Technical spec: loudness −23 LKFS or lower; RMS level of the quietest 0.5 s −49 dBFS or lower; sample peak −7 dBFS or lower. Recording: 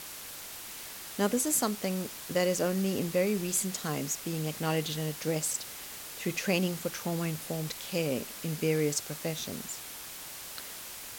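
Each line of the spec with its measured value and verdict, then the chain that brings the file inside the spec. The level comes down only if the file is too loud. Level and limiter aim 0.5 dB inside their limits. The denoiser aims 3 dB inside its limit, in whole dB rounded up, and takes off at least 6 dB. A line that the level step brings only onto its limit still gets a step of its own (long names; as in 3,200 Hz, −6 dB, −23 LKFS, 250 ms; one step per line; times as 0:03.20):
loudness −32.0 LKFS: in spec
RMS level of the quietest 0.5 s −43 dBFS: out of spec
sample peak −14.5 dBFS: in spec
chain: broadband denoise 9 dB, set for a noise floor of −43 dBFS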